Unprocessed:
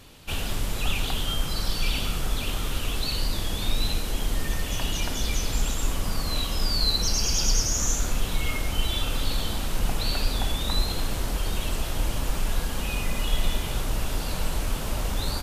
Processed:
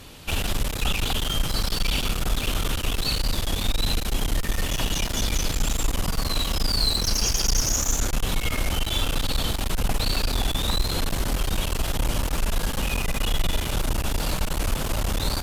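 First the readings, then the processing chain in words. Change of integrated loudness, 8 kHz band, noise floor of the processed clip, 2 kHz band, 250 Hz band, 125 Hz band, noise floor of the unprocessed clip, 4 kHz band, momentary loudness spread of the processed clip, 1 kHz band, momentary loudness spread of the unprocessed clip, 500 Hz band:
+2.5 dB, +2.0 dB, −29 dBFS, +3.0 dB, +3.0 dB, +2.5 dB, −31 dBFS, +2.5 dB, 5 LU, +3.0 dB, 7 LU, +3.0 dB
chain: in parallel at −0.5 dB: brickwall limiter −19 dBFS, peak gain reduction 8.5 dB
on the sum: asymmetric clip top −25.5 dBFS

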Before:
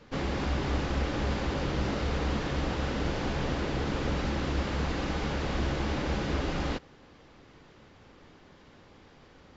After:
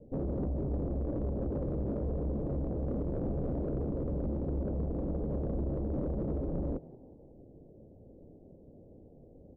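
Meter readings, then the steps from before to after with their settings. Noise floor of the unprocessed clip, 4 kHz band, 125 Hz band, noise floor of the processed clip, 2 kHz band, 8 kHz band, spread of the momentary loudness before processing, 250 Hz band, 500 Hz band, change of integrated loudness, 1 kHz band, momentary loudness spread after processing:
−56 dBFS, below −40 dB, −2.5 dB, −55 dBFS, below −30 dB, can't be measured, 1 LU, −2.0 dB, −2.5 dB, −3.5 dB, −14.5 dB, 1 LU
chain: Butterworth low-pass 640 Hz 48 dB per octave
in parallel at −11 dB: asymmetric clip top −35.5 dBFS, bottom −24 dBFS
on the sum: brickwall limiter −24.5 dBFS, peak gain reduction 6.5 dB
echo with shifted repeats 182 ms, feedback 37%, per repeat +96 Hz, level −21.5 dB
soft clipping −25.5 dBFS, distortion −21 dB

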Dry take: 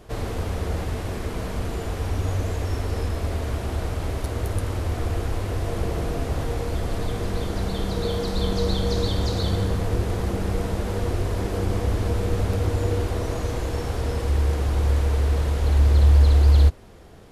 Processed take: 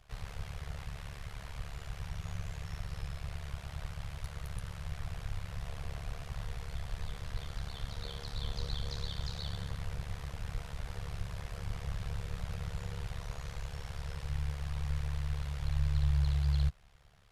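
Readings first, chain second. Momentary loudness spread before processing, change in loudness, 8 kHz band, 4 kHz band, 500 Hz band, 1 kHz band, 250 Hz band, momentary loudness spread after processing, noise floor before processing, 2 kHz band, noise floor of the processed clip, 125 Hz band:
10 LU, −15.0 dB, −13.5 dB, −11.0 dB, −24.0 dB, −16.0 dB, −18.5 dB, 10 LU, −31 dBFS, −11.5 dB, −48 dBFS, −14.5 dB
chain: guitar amp tone stack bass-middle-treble 10-0-10
amplitude modulation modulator 71 Hz, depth 85%
high-shelf EQ 5,300 Hz −11.5 dB
level −1.5 dB

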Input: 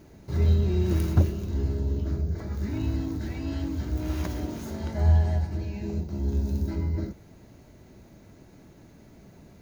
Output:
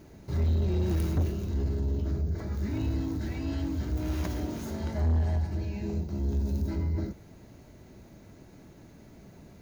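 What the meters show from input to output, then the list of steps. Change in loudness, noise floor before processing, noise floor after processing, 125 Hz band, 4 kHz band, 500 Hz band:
−3.0 dB, −52 dBFS, −52 dBFS, −3.5 dB, −2.0 dB, −2.5 dB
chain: soft clipping −21.5 dBFS, distortion −11 dB

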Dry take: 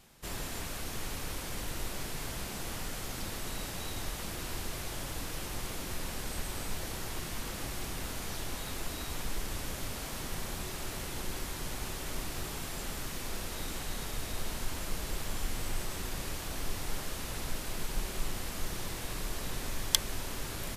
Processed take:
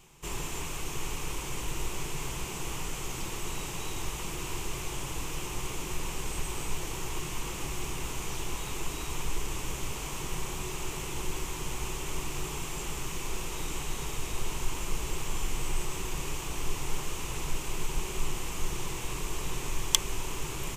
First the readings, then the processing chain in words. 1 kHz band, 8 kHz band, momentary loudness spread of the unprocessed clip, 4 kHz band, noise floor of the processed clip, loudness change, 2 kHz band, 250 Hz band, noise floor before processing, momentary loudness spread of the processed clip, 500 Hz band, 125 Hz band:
+3.5 dB, +3.5 dB, 1 LU, +1.5 dB, −37 dBFS, +2.5 dB, +2.0 dB, +2.0 dB, −40 dBFS, 1 LU, +3.0 dB, +3.0 dB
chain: EQ curve with evenly spaced ripples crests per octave 0.71, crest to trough 9 dB
level +1.5 dB

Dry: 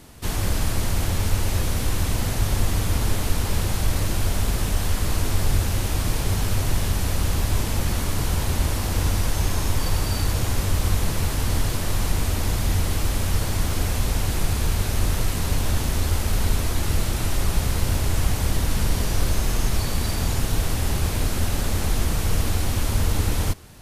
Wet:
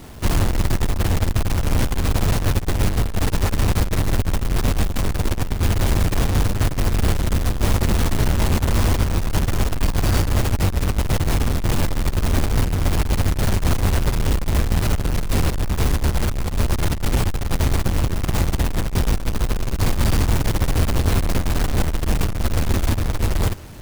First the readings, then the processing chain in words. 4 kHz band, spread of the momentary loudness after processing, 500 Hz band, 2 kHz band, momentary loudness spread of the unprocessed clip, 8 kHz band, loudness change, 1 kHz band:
0.0 dB, 3 LU, +4.5 dB, +2.5 dB, 1 LU, −2.0 dB, +3.0 dB, +3.5 dB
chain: each half-wave held at its own peak
compressor whose output falls as the input rises −17 dBFS, ratio −0.5

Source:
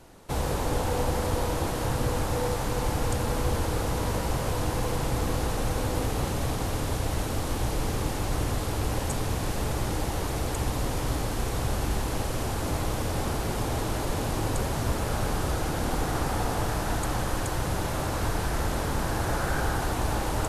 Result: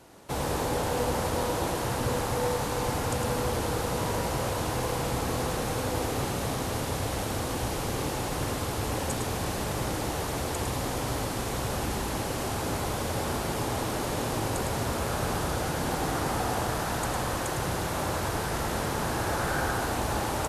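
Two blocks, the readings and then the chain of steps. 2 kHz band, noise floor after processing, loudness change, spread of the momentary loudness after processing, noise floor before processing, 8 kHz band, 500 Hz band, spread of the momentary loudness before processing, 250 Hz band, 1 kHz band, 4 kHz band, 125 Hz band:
+1.0 dB, −32 dBFS, −0.5 dB, 3 LU, −30 dBFS, +1.0 dB, +0.5 dB, 2 LU, −0.5 dB, +1.0 dB, +1.0 dB, −3.0 dB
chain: high-pass filter 130 Hz 6 dB per octave
single-tap delay 106 ms −5.5 dB

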